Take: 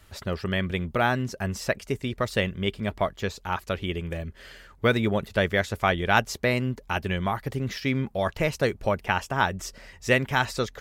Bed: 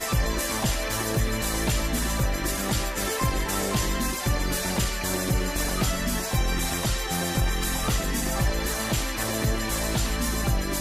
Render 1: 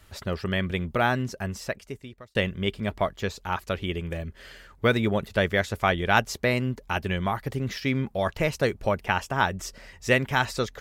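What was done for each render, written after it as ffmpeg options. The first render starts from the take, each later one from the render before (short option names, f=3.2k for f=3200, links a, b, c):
-filter_complex "[0:a]asplit=2[a][b];[a]atrim=end=2.35,asetpts=PTS-STARTPTS,afade=t=out:st=1.21:d=1.14[c];[b]atrim=start=2.35,asetpts=PTS-STARTPTS,afade=t=in:d=0.004:c=hsin[d];[c][d]concat=n=2:v=0:a=1"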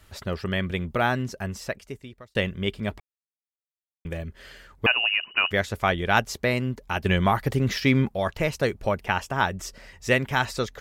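-filter_complex "[0:a]asettb=1/sr,asplit=3[a][b][c];[a]atrim=end=4.864[d];[b]atrim=start=4.86:end=5.51,asetpts=PTS-STARTPTS,afade=t=in:d=0.004:c=qsin,afade=t=out:st=0.646:d=0.004:c=qsin,lowpass=f=2.6k:t=q:w=0.5098,lowpass=f=2.6k:t=q:w=0.6013,lowpass=f=2.6k:t=q:w=0.9,lowpass=f=2.6k:t=q:w=2.563,afreqshift=-3000[e];[c]atrim=start=5.506[f];[d][e]acrossfade=d=0.004:c1=hsin:c2=qsin[g];[g][f]acrossfade=d=0.004:c1=qsin:c2=hsin,asettb=1/sr,asplit=3[h][i][j];[h]atrim=end=7.054[k];[i]atrim=start=7.05:end=8.09,asetpts=PTS-STARTPTS,afade=t=in:d=0.004:c=qsin,afade=t=out:st=1.036:d=0.004:c=qsin,acontrast=49[l];[j]atrim=start=8.086[m];[k][l]acrossfade=d=0.004:c1=hsin:c2=qsin[n];[n][m]acrossfade=d=0.004:c1=qsin:c2=hsin,asplit=3[o][p][q];[o]atrim=end=3,asetpts=PTS-STARTPTS,afade=t=out:st=2.996:d=0.004:c=hsin[r];[p]atrim=start=3:end=4.05,asetpts=PTS-STARTPTS,volume=0[s];[q]atrim=start=4.05,asetpts=PTS-STARTPTS,afade=t=in:d=0.004:c=hsin[t];[r][s][t]concat=n=3:v=0:a=1"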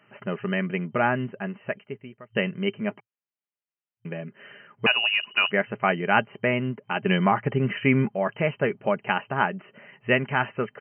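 -af "afftfilt=real='re*between(b*sr/4096,110,3100)':imag='im*between(b*sr/4096,110,3100)':win_size=4096:overlap=0.75,aecho=1:1:4.9:0.34"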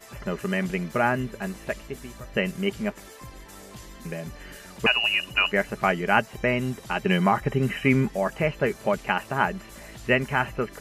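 -filter_complex "[1:a]volume=-18dB[a];[0:a][a]amix=inputs=2:normalize=0"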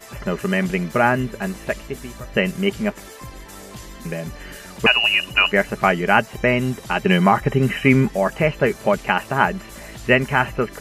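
-af "volume=6dB,alimiter=limit=-1dB:level=0:latency=1"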